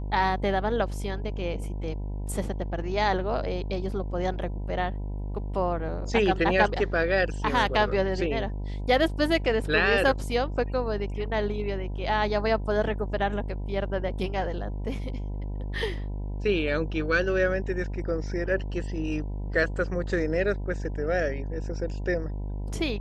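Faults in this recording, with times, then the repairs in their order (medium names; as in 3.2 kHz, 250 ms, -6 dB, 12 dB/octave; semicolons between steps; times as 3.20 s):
buzz 50 Hz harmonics 20 -32 dBFS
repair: de-hum 50 Hz, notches 20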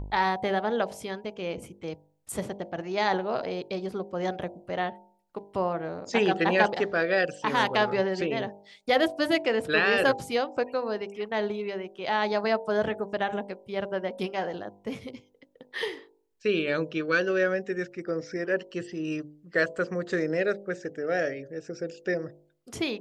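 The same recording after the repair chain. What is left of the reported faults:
nothing left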